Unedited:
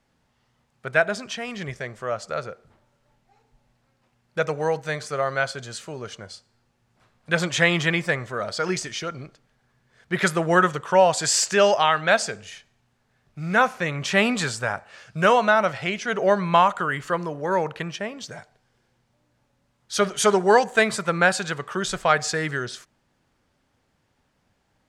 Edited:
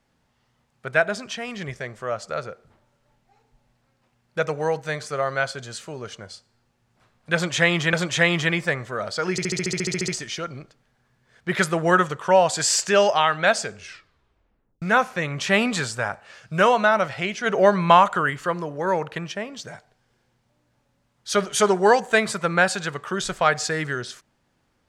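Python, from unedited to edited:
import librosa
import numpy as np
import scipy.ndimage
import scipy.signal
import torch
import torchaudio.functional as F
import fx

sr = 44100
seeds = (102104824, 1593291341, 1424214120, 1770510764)

y = fx.edit(x, sr, fx.repeat(start_s=7.34, length_s=0.59, count=2),
    fx.stutter(start_s=8.72, slice_s=0.07, count=12),
    fx.tape_stop(start_s=12.38, length_s=1.08),
    fx.clip_gain(start_s=16.1, length_s=0.84, db=3.0), tone=tone)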